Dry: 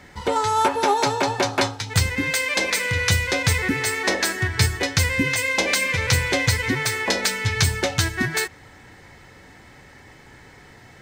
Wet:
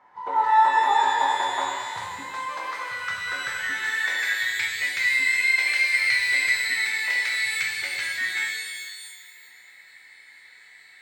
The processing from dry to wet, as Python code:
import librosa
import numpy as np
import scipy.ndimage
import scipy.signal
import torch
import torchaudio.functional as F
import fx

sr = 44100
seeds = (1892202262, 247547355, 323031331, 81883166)

y = fx.filter_sweep_bandpass(x, sr, from_hz=960.0, to_hz=2100.0, start_s=2.25, end_s=4.44, q=5.6)
y = fx.rev_shimmer(y, sr, seeds[0], rt60_s=1.6, semitones=12, shimmer_db=-8, drr_db=-1.5)
y = y * 10.0 ** (1.5 / 20.0)